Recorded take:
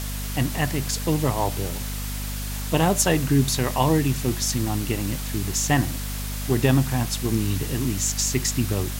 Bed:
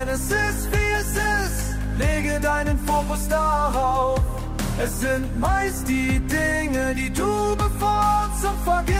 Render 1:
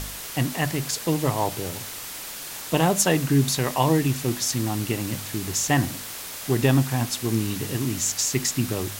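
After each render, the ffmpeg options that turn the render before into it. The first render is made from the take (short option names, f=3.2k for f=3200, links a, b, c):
-af "bandreject=f=50:t=h:w=4,bandreject=f=100:t=h:w=4,bandreject=f=150:t=h:w=4,bandreject=f=200:t=h:w=4,bandreject=f=250:t=h:w=4"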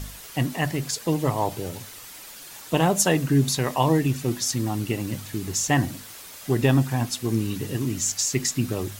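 -af "afftdn=nr=8:nf=-36"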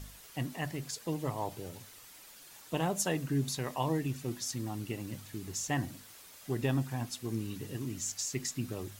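-af "volume=-11.5dB"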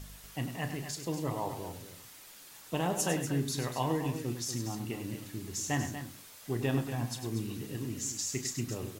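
-filter_complex "[0:a]asplit=2[a][b];[b]adelay=34,volume=-11dB[c];[a][c]amix=inputs=2:normalize=0,aecho=1:1:99.13|239.1:0.355|0.316"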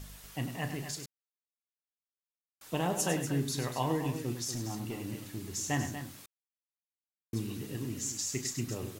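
-filter_complex "[0:a]asettb=1/sr,asplit=3[a][b][c];[a]atrim=end=4.514[d];[b]atrim=start=4.51:end=5.55,asetpts=PTS-STARTPTS,afade=t=in:d=0.004:c=qsin,afade=t=out:st=1.036:d=0.004:c=qsin,asoftclip=type=hard:threshold=-31.5dB[e];[c]atrim=start=5.546[f];[d][e]acrossfade=d=0.004:c1=hsin:c2=qsin[g];[g][f]acrossfade=d=0.004:c1=qsin:c2=hsin,asplit=5[h][i][j][k][l];[h]atrim=end=1.06,asetpts=PTS-STARTPTS,afade=t=out:st=1.056:d=0.004:c=hsin[m];[i]atrim=start=1.06:end=2.61,asetpts=PTS-STARTPTS,volume=0[n];[j]atrim=start=2.61:end=6.26,asetpts=PTS-STARTPTS,afade=t=in:d=0.004:c=hsin,afade=t=out:st=3.646:d=0.004:c=hsin[o];[k]atrim=start=6.26:end=7.33,asetpts=PTS-STARTPTS,volume=0[p];[l]atrim=start=7.33,asetpts=PTS-STARTPTS,afade=t=in:d=0.004:c=hsin[q];[m][n][o][p][q]concat=n=5:v=0:a=1"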